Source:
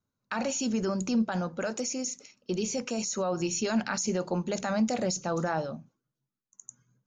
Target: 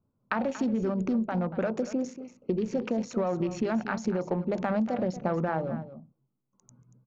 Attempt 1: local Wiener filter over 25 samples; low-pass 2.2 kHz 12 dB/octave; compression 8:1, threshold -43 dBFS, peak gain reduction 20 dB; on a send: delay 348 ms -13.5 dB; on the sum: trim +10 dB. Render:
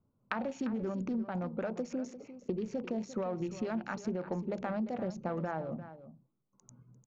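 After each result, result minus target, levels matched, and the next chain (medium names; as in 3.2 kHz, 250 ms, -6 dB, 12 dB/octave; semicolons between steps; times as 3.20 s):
echo 114 ms late; compression: peak gain reduction +7 dB
local Wiener filter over 25 samples; low-pass 2.2 kHz 12 dB/octave; compression 8:1, threshold -43 dBFS, peak gain reduction 20 dB; on a send: delay 234 ms -13.5 dB; on the sum: trim +10 dB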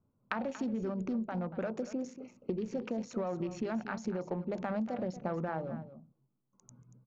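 compression: peak gain reduction +7 dB
local Wiener filter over 25 samples; low-pass 2.2 kHz 12 dB/octave; compression 8:1, threshold -35 dBFS, peak gain reduction 13 dB; on a send: delay 234 ms -13.5 dB; on the sum: trim +10 dB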